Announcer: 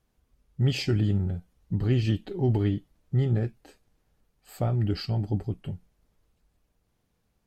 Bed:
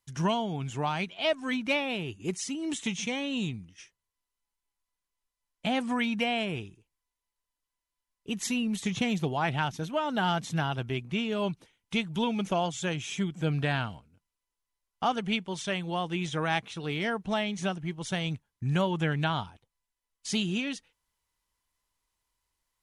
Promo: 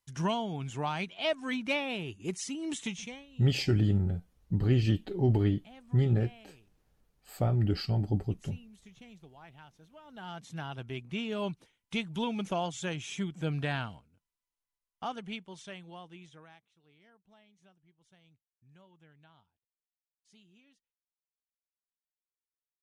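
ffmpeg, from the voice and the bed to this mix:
-filter_complex "[0:a]adelay=2800,volume=-1.5dB[a];[1:a]volume=17.5dB,afade=t=out:st=2.81:d=0.45:silence=0.0841395,afade=t=in:st=10.04:d=1.29:silence=0.0944061,afade=t=out:st=13.72:d=2.88:silence=0.0354813[b];[a][b]amix=inputs=2:normalize=0"

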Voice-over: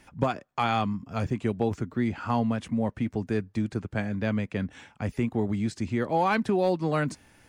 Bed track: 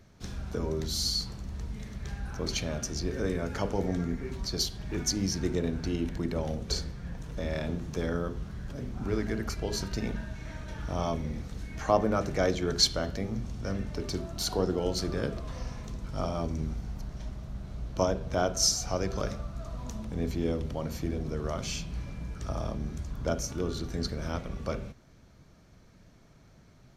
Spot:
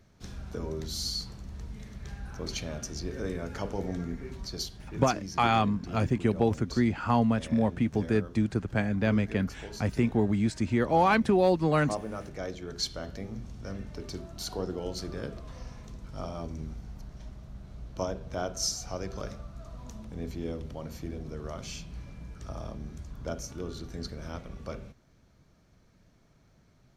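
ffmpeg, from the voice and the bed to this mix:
-filter_complex "[0:a]adelay=4800,volume=1.5dB[a];[1:a]volume=1dB,afade=t=out:st=4.23:d=0.94:silence=0.473151,afade=t=in:st=12.69:d=0.5:silence=0.595662[b];[a][b]amix=inputs=2:normalize=0"

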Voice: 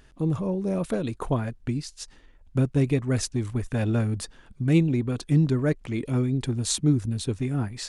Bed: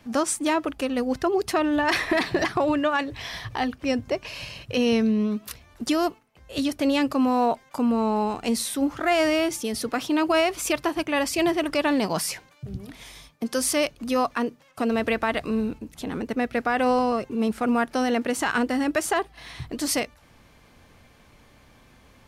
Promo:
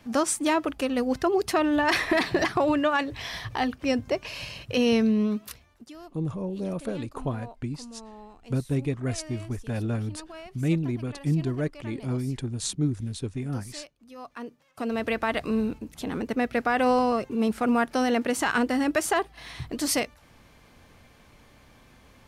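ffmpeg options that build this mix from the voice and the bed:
-filter_complex "[0:a]adelay=5950,volume=-4.5dB[a];[1:a]volume=21dB,afade=t=out:st=5.32:d=0.56:silence=0.0841395,afade=t=in:st=14.16:d=1.35:silence=0.0841395[b];[a][b]amix=inputs=2:normalize=0"

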